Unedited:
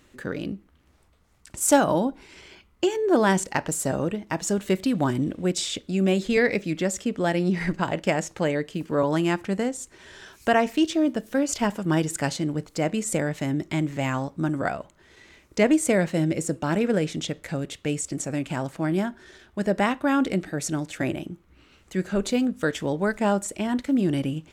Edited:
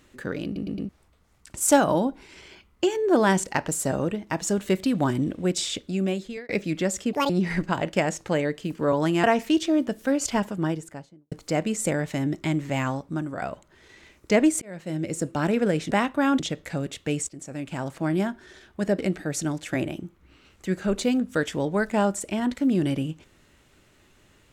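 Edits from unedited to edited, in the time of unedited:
0.45 stutter in place 0.11 s, 4 plays
5.82–6.49 fade out
7.13–7.4 speed 163%
9.34–10.51 cut
11.54–12.59 studio fade out
14.15–14.69 fade out, to -8 dB
15.89–16.57 fade in
18.07–18.8 fade in, from -14.5 dB
19.77–20.26 move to 17.18

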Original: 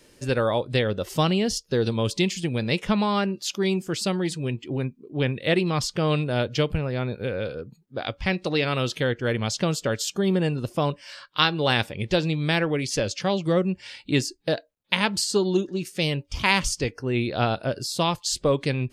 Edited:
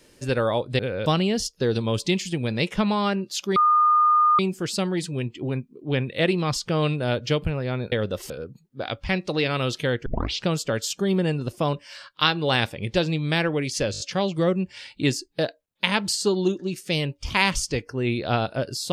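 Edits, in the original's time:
0.79–1.17 swap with 7.2–7.47
3.67 add tone 1220 Hz -14.5 dBFS 0.83 s
9.23 tape start 0.41 s
13.09 stutter 0.02 s, 5 plays

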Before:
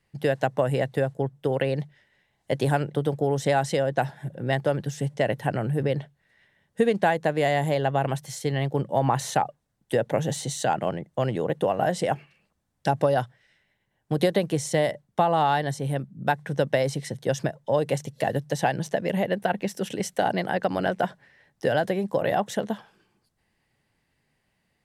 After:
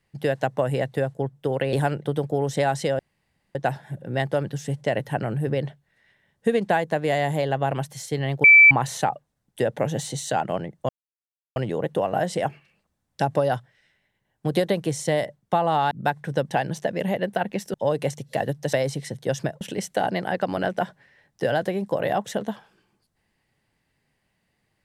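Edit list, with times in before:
1.73–2.62 cut
3.88 insert room tone 0.56 s
8.77–9.04 bleep 2320 Hz -7.5 dBFS
11.22 insert silence 0.67 s
15.57–16.13 cut
16.73–17.61 swap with 18.6–19.83

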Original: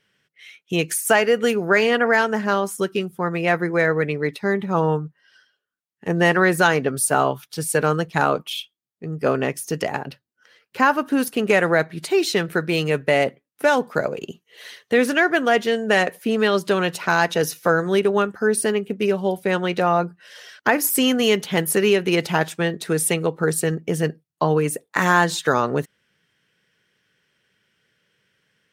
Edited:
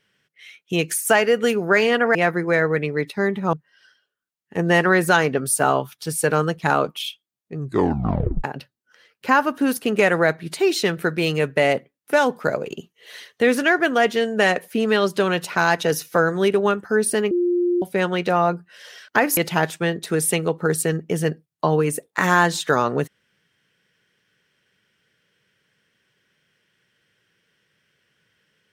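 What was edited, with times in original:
2.15–3.41 cut
4.79–5.04 cut
9.06 tape stop 0.89 s
18.82–19.33 bleep 352 Hz -16.5 dBFS
20.88–22.15 cut

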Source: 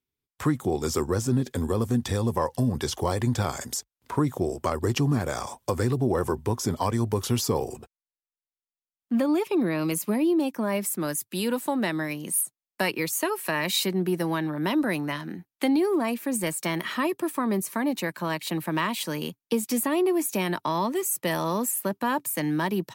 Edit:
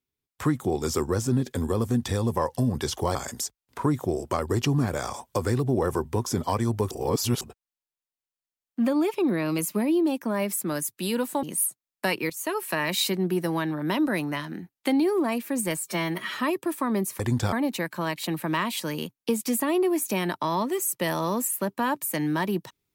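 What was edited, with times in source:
3.15–3.48 move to 17.76
7.24–7.74 reverse
11.76–12.19 cut
13.06–13.34 fade in, from -13 dB
16.56–16.95 stretch 1.5×

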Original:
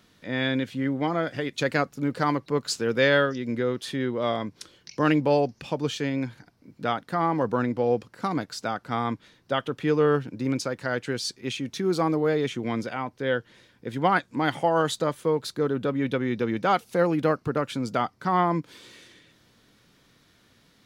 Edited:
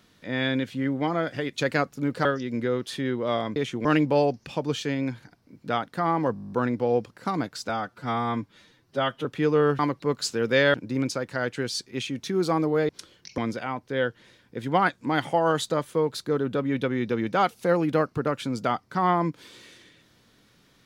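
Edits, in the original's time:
2.25–3.2 move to 10.24
4.51–5 swap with 12.39–12.68
7.49 stutter 0.02 s, 10 plays
8.66–9.7 stretch 1.5×

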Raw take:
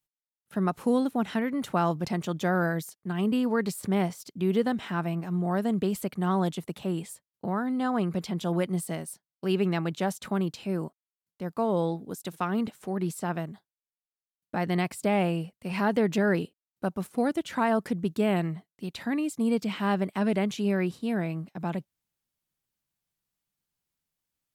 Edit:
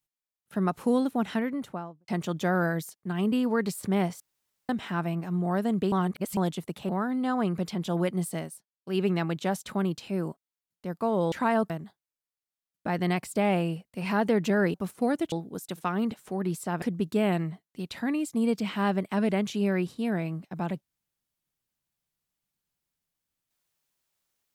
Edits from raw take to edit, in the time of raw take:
1.32–2.08 studio fade out
4.2–4.69 room tone
5.92–6.37 reverse
6.89–7.45 cut
8.98–9.57 dip -22 dB, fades 0.25 s
11.88–13.38 swap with 17.48–17.86
16.42–16.9 cut

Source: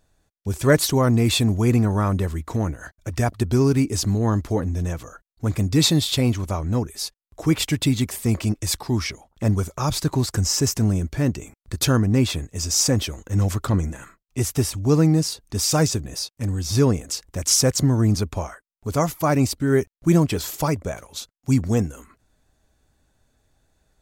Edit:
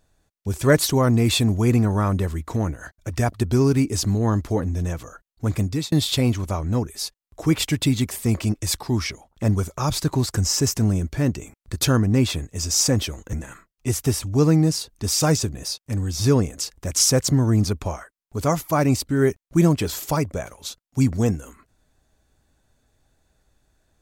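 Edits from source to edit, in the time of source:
5.6–5.92 fade out
13.33–13.84 cut

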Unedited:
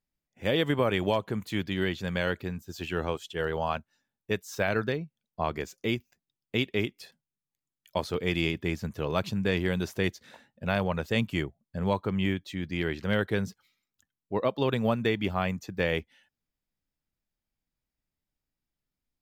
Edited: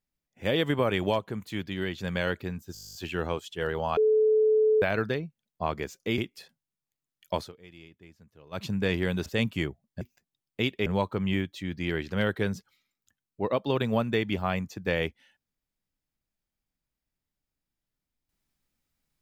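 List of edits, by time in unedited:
1.19–1.98 gain -3 dB
2.73 stutter 0.02 s, 12 plays
3.75–4.6 bleep 433 Hz -18.5 dBFS
5.96–6.81 move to 11.78
8.03–9.26 dip -22.5 dB, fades 0.12 s
9.89–11.03 cut

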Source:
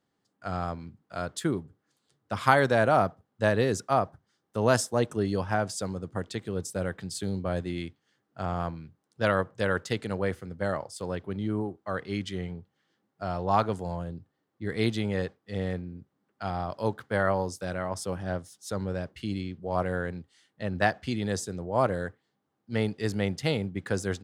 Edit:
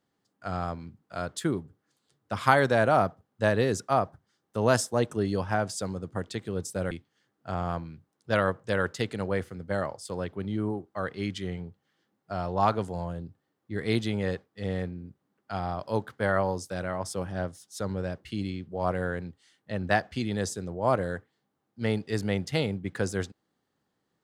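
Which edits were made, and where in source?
6.91–7.82 cut

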